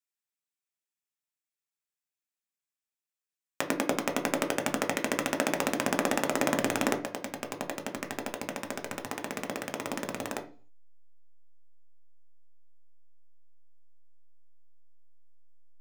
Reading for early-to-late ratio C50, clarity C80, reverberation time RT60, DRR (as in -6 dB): 14.0 dB, 20.0 dB, 0.40 s, 5.0 dB